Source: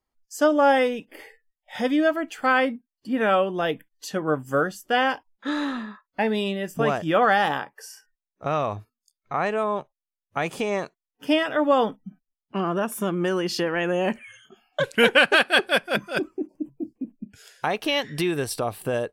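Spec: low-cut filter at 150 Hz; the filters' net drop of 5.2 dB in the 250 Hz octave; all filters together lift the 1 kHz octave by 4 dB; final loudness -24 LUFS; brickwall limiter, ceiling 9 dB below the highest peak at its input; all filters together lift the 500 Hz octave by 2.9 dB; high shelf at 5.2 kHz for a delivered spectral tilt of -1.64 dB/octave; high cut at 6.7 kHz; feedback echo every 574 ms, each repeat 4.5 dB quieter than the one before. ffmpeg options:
-af "highpass=150,lowpass=6700,equalizer=f=250:t=o:g=-8.5,equalizer=f=500:t=o:g=4,equalizer=f=1000:t=o:g=4.5,highshelf=f=5200:g=3.5,alimiter=limit=0.266:level=0:latency=1,aecho=1:1:574|1148|1722|2296|2870|3444|4018|4592|5166:0.596|0.357|0.214|0.129|0.0772|0.0463|0.0278|0.0167|0.01,volume=0.944"

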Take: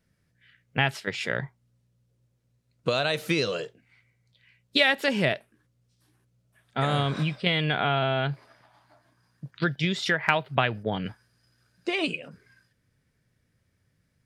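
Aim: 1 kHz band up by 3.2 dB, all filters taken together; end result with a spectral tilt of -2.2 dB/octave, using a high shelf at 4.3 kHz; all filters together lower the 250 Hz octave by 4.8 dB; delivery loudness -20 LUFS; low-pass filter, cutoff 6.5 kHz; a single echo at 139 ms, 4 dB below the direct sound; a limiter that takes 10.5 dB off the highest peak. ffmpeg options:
-af "lowpass=6500,equalizer=f=250:t=o:g=-8.5,equalizer=f=1000:t=o:g=5,highshelf=f=4300:g=4.5,alimiter=limit=0.224:level=0:latency=1,aecho=1:1:139:0.631,volume=2.11"

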